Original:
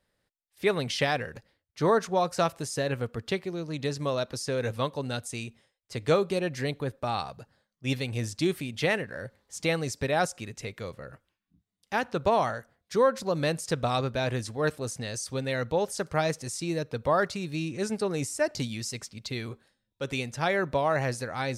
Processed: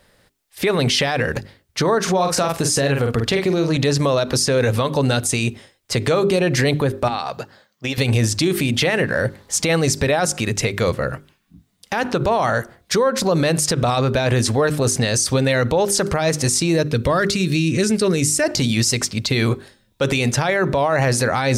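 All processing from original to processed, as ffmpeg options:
ffmpeg -i in.wav -filter_complex "[0:a]asettb=1/sr,asplit=3[link_01][link_02][link_03];[link_01]atrim=end=2.024[link_04];[link_02]atrim=start=2.02:end=3.77,asetpts=PTS-STARTPTS,afade=type=in:duration=0.004:curve=qsin,afade=type=out:start_time=1.746:duration=0.004:curve=qsin,asplit=2[link_05][link_06];[link_06]adelay=44,volume=-8dB[link_07];[link_05][link_07]amix=inputs=2:normalize=0,atrim=end_sample=77175,acompressor=threshold=-34dB:ratio=5:attack=3.2:release=140:knee=1:detection=peak[link_08];[link_03]atrim=start=3.766[link_09];[link_04][link_08]acrossfade=duration=0.004:curve1=hsin:curve2=qsin[link_10];[link_10][link_09]acrossfade=duration=0.004:curve1=qsin:curve2=hsin,asettb=1/sr,asplit=3[link_11][link_12][link_13];[link_11]atrim=end=7.084[link_14];[link_12]atrim=start=7.08:end=7.98,asetpts=PTS-STARTPTS,afade=type=in:duration=0.004:curve=qsin,afade=type=out:start_time=0.896:duration=0.004:curve=qsin,highpass=frequency=360:poles=1,equalizer=frequency=9800:width=2:gain=-9.5,acompressor=threshold=-39dB:ratio=10:attack=3.2:release=140:knee=1:detection=peak[link_15];[link_13]atrim=start=7.976[link_16];[link_14][link_15]acrossfade=duration=0.004:curve1=hsin:curve2=qsin[link_17];[link_17][link_16]acrossfade=duration=0.004:curve1=qsin:curve2=hsin,asettb=1/sr,asplit=3[link_18][link_19][link_20];[link_18]atrim=end=16.884[link_21];[link_19]atrim=start=16.88:end=18.44,asetpts=PTS-STARTPTS,afade=type=in:duration=0.004:curve=qsin,afade=type=out:start_time=1.556:duration=0.004:curve=qsin,equalizer=frequency=820:width_type=o:width=1.5:gain=-10.5,bandreject=frequency=810:width=12[link_22];[link_20]atrim=start=18.436[link_23];[link_21][link_22]acrossfade=duration=0.004:curve1=hsin:curve2=qsin[link_24];[link_24][link_23]acrossfade=duration=0.004:curve1=qsin:curve2=hsin,bandreject=frequency=50:width_type=h:width=6,bandreject=frequency=100:width_type=h:width=6,bandreject=frequency=150:width_type=h:width=6,bandreject=frequency=200:width_type=h:width=6,bandreject=frequency=250:width_type=h:width=6,bandreject=frequency=300:width_type=h:width=6,bandreject=frequency=350:width_type=h:width=6,bandreject=frequency=400:width_type=h:width=6,acompressor=threshold=-27dB:ratio=6,alimiter=level_in=29dB:limit=-1dB:release=50:level=0:latency=1,volume=-8.5dB" out.wav

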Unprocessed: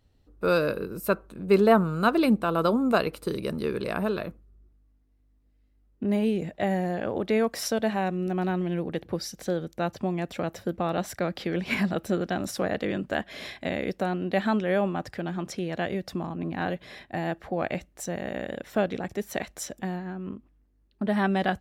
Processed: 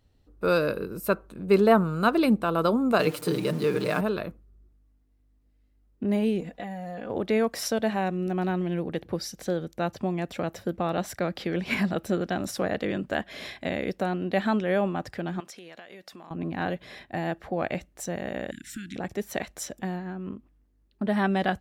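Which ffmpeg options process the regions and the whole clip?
ffmpeg -i in.wav -filter_complex "[0:a]asettb=1/sr,asplit=3[link_01][link_02][link_03];[link_01]atrim=end=2.994[link_04];[link_02]atrim=start=2.99:end=4.01,asetpts=PTS-STARTPTS,afade=type=in:duration=0.004:curve=qsin,afade=type=out:start_time=1.016:duration=0.004:curve=qsin,aeval=exprs='val(0)+0.5*0.0119*sgn(val(0))':channel_layout=same,highpass=frequency=100:width=0.5412,highpass=frequency=100:width=1.3066,aecho=1:1:6.6:0.93,atrim=end_sample=44982[link_05];[link_03]atrim=start=4.006[link_06];[link_04][link_05]acrossfade=duration=0.004:curve1=hsin:curve2=qsin[link_07];[link_07][link_06]acrossfade=duration=0.004:curve1=qsin:curve2=hsin,asettb=1/sr,asplit=3[link_08][link_09][link_10];[link_08]atrim=end=6.404[link_11];[link_09]atrim=start=6.4:end=7.1,asetpts=PTS-STARTPTS,afade=type=in:duration=0.004:curve=qsin,afade=type=out:start_time=0.696:duration=0.004:curve=qsin,aecho=1:1:4.1:0.76,atrim=end_sample=30870,acompressor=threshold=-33dB:ratio=5:attack=3.2:release=140:knee=1:detection=peak[link_12];[link_10]atrim=start=7.096[link_13];[link_11][link_12]acrossfade=duration=0.004:curve1=hsin:curve2=qsin[link_14];[link_14][link_13]acrossfade=duration=0.004:curve1=qsin:curve2=hsin,asettb=1/sr,asplit=3[link_15][link_16][link_17];[link_15]atrim=end=15.404[link_18];[link_16]atrim=start=15.4:end=16.31,asetpts=PTS-STARTPTS,afade=type=in:duration=0.004:curve=qsin,afade=type=out:start_time=0.906:duration=0.004:curve=qsin,highpass=frequency=1100:poles=1,acompressor=threshold=-40dB:ratio=12:attack=3.2:release=140:knee=1:detection=peak[link_19];[link_17]atrim=start=16.306[link_20];[link_18][link_19]acrossfade=duration=0.004:curve1=hsin:curve2=qsin[link_21];[link_21][link_20]acrossfade=duration=0.004:curve1=qsin:curve2=hsin,asettb=1/sr,asplit=3[link_22][link_23][link_24];[link_22]atrim=end=18.514[link_25];[link_23]atrim=start=18.51:end=18.96,asetpts=PTS-STARTPTS,afade=type=in:duration=0.004:curve=qsin,afade=type=out:start_time=0.446:duration=0.004:curve=qsin,equalizer=frequency=8100:width=1.2:gain=14.5,acompressor=threshold=-33dB:ratio=2.5:attack=3.2:release=140:knee=1:detection=peak,asuperstop=centerf=680:order=12:qfactor=0.59[link_26];[link_24]atrim=start=18.956[link_27];[link_25][link_26]acrossfade=duration=0.004:curve1=hsin:curve2=qsin[link_28];[link_28][link_27]acrossfade=duration=0.004:curve1=qsin:curve2=hsin" out.wav

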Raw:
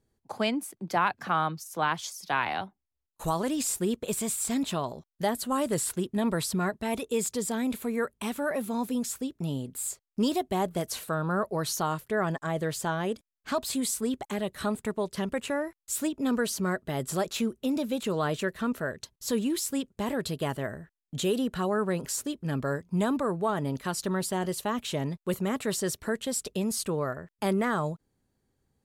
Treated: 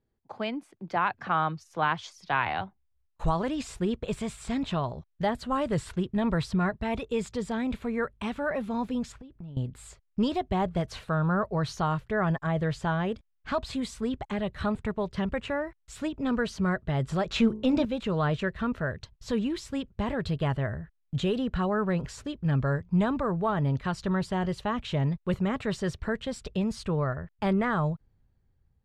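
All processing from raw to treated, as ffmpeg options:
ffmpeg -i in.wav -filter_complex "[0:a]asettb=1/sr,asplit=3[link_01][link_02][link_03];[link_01]atrim=end=9.124[link_04];[link_02]atrim=start=9.12:end=9.57,asetpts=PTS-STARTPTS,afade=type=in:duration=0.004:curve=qsin,afade=type=out:start_time=0.446:duration=0.004:curve=qsin,lowpass=frequency=2400:poles=1,acompressor=threshold=-43dB:ratio=8:attack=3.2:release=140:knee=1:detection=peak[link_05];[link_03]atrim=start=9.566[link_06];[link_04][link_05]acrossfade=duration=0.004:curve1=hsin:curve2=qsin[link_07];[link_07][link_06]acrossfade=duration=0.004:curve1=qsin:curve2=hsin,asettb=1/sr,asplit=3[link_08][link_09][link_10];[link_08]atrim=end=17.294[link_11];[link_09]atrim=start=17.29:end=17.85,asetpts=PTS-STARTPTS,afade=type=in:duration=0.004:curve=qsin,afade=type=out:start_time=0.556:duration=0.004:curve=qsin,lowpass=11000,bandreject=frequency=53.74:width_type=h:width=4,bandreject=frequency=107.48:width_type=h:width=4,bandreject=frequency=161.22:width_type=h:width=4,bandreject=frequency=214.96:width_type=h:width=4,bandreject=frequency=268.7:width_type=h:width=4,bandreject=frequency=322.44:width_type=h:width=4,bandreject=frequency=376.18:width_type=h:width=4,bandreject=frequency=429.92:width_type=h:width=4,bandreject=frequency=483.66:width_type=h:width=4,bandreject=frequency=537.4:width_type=h:width=4,bandreject=frequency=591.14:width_type=h:width=4,bandreject=frequency=644.88:width_type=h:width=4,bandreject=frequency=698.62:width_type=h:width=4,bandreject=frequency=752.36:width_type=h:width=4,bandreject=frequency=806.1:width_type=h:width=4,bandreject=frequency=859.84:width_type=h:width=4,bandreject=frequency=913.58:width_type=h:width=4,bandreject=frequency=967.32:width_type=h:width=4,bandreject=frequency=1021.06:width_type=h:width=4,bandreject=frequency=1074.8:width_type=h:width=4,acontrast=57[link_12];[link_10]atrim=start=17.846[link_13];[link_11][link_12]acrossfade=duration=0.004:curve1=hsin:curve2=qsin[link_14];[link_14][link_13]acrossfade=duration=0.004:curve1=qsin:curve2=hsin,lowpass=3200,dynaudnorm=framelen=290:gausssize=7:maxgain=5.5dB,asubboost=boost=6:cutoff=110,volume=-4dB" out.wav

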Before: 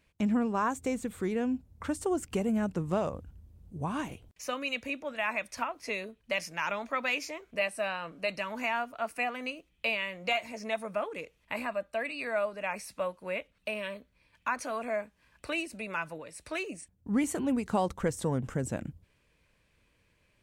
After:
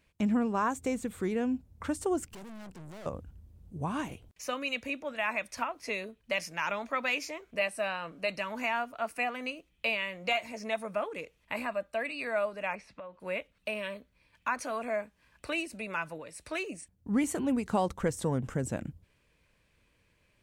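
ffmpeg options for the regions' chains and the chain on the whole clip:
ffmpeg -i in.wav -filter_complex "[0:a]asettb=1/sr,asplit=3[link_01][link_02][link_03];[link_01]atrim=end=2.294[link_04];[link_02]atrim=start=2.29:end=3.06,asetpts=PTS-STARTPTS,afade=type=in:duration=0.004:curve=qsin,afade=type=out:start_time=0.766:duration=0.004:curve=qsin,highshelf=frequency=4200:gain=4.5,aeval=exprs='(tanh(178*val(0)+0.7)-tanh(0.7))/178':channel_layout=same[link_05];[link_03]atrim=start=3.056[link_06];[link_04][link_05]acrossfade=duration=0.004:curve1=hsin:curve2=qsin[link_07];[link_07][link_06]acrossfade=duration=0.004:curve1=qsin:curve2=hsin,asettb=1/sr,asplit=3[link_08][link_09][link_10];[link_08]atrim=end=12.754[link_11];[link_09]atrim=start=12.75:end=13.2,asetpts=PTS-STARTPTS,afade=type=in:duration=0.004:curve=qsin,afade=type=out:start_time=0.446:duration=0.004:curve=qsin,lowpass=2900,acompressor=threshold=-41dB:ratio=6:attack=3.2:release=140:knee=1:detection=peak[link_12];[link_10]atrim=start=13.196[link_13];[link_11][link_12]acrossfade=duration=0.004:curve1=hsin:curve2=qsin[link_14];[link_14][link_13]acrossfade=duration=0.004:curve1=qsin:curve2=hsin" out.wav

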